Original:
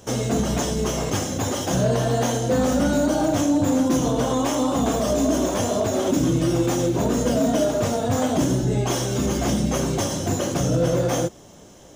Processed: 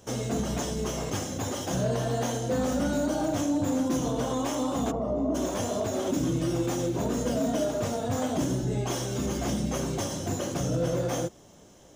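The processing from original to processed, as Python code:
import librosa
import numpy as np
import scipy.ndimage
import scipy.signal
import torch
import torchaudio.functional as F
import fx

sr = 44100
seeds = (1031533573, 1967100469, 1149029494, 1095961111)

y = fx.savgol(x, sr, points=65, at=(4.9, 5.34), fade=0.02)
y = y * librosa.db_to_amplitude(-7.0)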